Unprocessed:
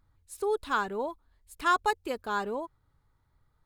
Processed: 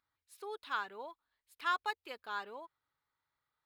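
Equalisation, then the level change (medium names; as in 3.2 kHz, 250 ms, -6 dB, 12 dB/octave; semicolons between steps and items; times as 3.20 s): distance through air 340 m; differentiator; treble shelf 9.2 kHz +8 dB; +9.0 dB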